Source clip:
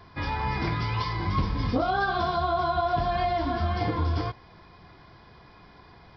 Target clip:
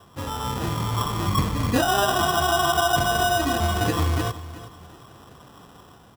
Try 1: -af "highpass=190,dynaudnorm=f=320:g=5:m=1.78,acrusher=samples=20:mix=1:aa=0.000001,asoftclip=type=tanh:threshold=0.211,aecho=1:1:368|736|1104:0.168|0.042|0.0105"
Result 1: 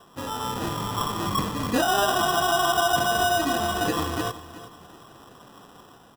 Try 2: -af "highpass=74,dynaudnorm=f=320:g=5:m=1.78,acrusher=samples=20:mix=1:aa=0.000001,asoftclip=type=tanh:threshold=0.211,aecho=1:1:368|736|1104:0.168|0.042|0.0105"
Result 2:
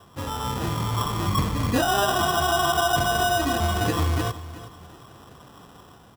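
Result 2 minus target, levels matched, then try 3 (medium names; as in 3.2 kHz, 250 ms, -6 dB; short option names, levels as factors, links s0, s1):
saturation: distortion +10 dB
-af "highpass=74,dynaudnorm=f=320:g=5:m=1.78,acrusher=samples=20:mix=1:aa=0.000001,asoftclip=type=tanh:threshold=0.422,aecho=1:1:368|736|1104:0.168|0.042|0.0105"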